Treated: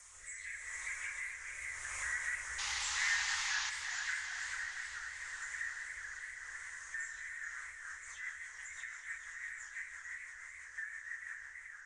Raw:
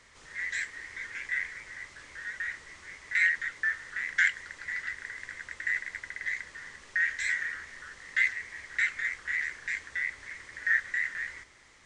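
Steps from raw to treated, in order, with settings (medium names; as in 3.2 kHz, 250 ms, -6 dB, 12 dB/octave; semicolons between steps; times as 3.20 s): delay that grows with frequency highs early, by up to 267 ms; Doppler pass-by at 2.63 s, 12 m/s, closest 3.5 m; FFT filter 110 Hz 0 dB, 190 Hz -22 dB, 1.1 kHz +5 dB, 4.6 kHz -7 dB, 6.7 kHz +10 dB; compression 3:1, threshold -59 dBFS, peak gain reduction 23 dB; Schroeder reverb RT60 3.2 s, combs from 30 ms, DRR 4 dB; rotary cabinet horn 0.85 Hz, later 6 Hz, at 7.27 s; painted sound noise, 2.58–3.70 s, 780–7100 Hz -58 dBFS; modulated delay 437 ms, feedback 64%, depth 152 cents, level -8 dB; trim +18 dB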